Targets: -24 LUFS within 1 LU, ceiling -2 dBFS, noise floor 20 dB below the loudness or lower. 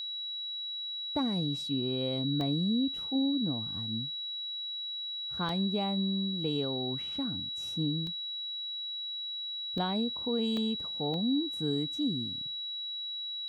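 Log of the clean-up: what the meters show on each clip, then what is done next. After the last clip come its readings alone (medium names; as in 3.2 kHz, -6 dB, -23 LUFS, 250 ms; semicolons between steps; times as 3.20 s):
dropouts 6; longest dropout 1.7 ms; steady tone 3.9 kHz; tone level -35 dBFS; loudness -32.0 LUFS; peak level -18.0 dBFS; loudness target -24.0 LUFS
-> interpolate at 2.41/5.49/8.07/9.78/10.57/11.14 s, 1.7 ms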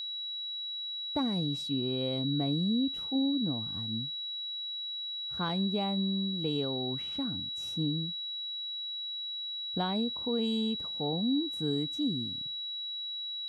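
dropouts 0; steady tone 3.9 kHz; tone level -35 dBFS
-> band-stop 3.9 kHz, Q 30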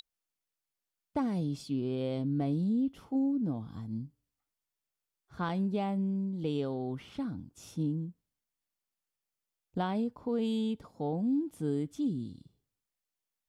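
steady tone not found; loudness -33.5 LUFS; peak level -19.0 dBFS; loudness target -24.0 LUFS
-> trim +9.5 dB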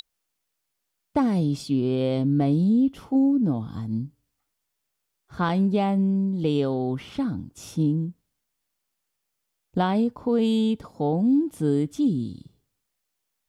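loudness -24.0 LUFS; peak level -9.5 dBFS; noise floor -80 dBFS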